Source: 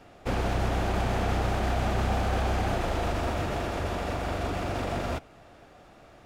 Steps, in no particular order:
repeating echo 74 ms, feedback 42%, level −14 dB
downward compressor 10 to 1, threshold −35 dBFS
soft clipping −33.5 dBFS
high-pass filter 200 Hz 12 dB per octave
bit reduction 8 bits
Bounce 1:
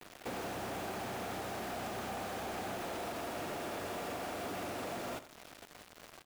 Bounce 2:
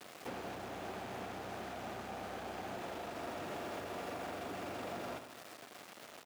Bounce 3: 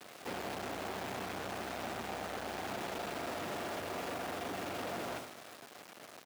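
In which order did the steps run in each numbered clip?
high-pass filter, then downward compressor, then soft clipping, then bit reduction, then repeating echo
bit reduction, then repeating echo, then downward compressor, then soft clipping, then high-pass filter
repeating echo, then soft clipping, then downward compressor, then bit reduction, then high-pass filter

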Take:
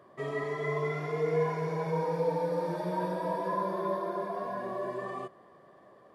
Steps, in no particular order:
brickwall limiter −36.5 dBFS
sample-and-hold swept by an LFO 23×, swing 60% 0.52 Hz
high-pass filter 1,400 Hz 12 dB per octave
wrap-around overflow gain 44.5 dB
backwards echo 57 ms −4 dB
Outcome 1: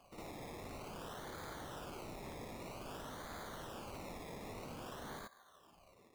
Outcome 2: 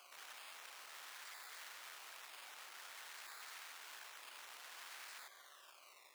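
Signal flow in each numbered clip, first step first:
high-pass filter, then sample-and-hold swept by an LFO, then brickwall limiter, then wrap-around overflow, then backwards echo
sample-and-hold swept by an LFO, then backwards echo, then brickwall limiter, then wrap-around overflow, then high-pass filter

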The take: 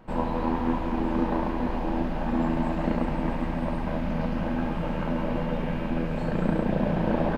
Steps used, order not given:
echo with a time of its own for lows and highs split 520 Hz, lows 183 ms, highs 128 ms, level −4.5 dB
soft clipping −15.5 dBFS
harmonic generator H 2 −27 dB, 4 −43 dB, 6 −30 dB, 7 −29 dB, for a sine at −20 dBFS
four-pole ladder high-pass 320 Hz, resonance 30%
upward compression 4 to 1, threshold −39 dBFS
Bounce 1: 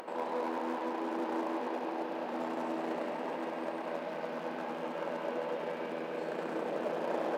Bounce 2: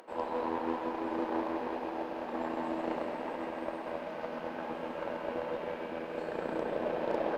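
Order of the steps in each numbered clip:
echo with a time of its own for lows and highs, then harmonic generator, then soft clipping, then four-pole ladder high-pass, then upward compression
echo with a time of its own for lows and highs, then upward compression, then four-pole ladder high-pass, then harmonic generator, then soft clipping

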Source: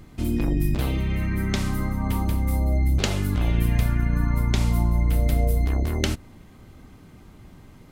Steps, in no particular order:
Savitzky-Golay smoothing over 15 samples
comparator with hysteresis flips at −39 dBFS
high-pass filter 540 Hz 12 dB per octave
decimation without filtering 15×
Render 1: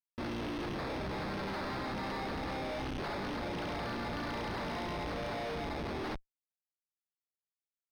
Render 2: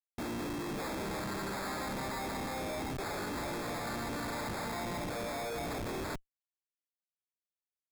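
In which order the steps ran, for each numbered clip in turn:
decimation without filtering, then high-pass filter, then comparator with hysteresis, then Savitzky-Golay smoothing
high-pass filter, then comparator with hysteresis, then Savitzky-Golay smoothing, then decimation without filtering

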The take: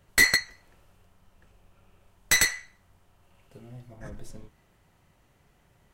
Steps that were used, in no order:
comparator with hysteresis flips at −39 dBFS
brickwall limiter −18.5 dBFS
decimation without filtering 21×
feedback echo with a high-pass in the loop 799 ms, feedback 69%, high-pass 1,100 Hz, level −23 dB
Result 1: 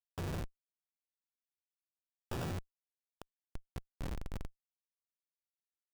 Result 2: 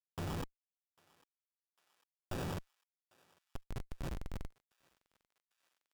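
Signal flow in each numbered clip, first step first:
decimation without filtering, then brickwall limiter, then feedback echo with a high-pass in the loop, then comparator with hysteresis
brickwall limiter, then comparator with hysteresis, then decimation without filtering, then feedback echo with a high-pass in the loop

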